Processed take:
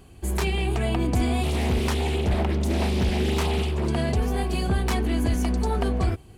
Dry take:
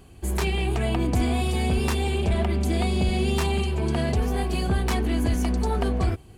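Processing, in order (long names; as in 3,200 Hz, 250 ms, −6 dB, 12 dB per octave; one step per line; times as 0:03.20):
0:01.43–0:03.88: highs frequency-modulated by the lows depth 0.6 ms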